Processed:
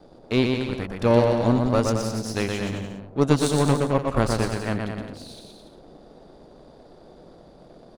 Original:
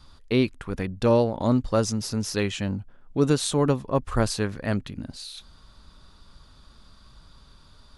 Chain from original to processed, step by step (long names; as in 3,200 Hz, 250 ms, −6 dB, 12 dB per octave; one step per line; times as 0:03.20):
noise in a band 130–680 Hz −42 dBFS
power curve on the samples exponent 1.4
bouncing-ball delay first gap 120 ms, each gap 0.8×, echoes 5
level +3.5 dB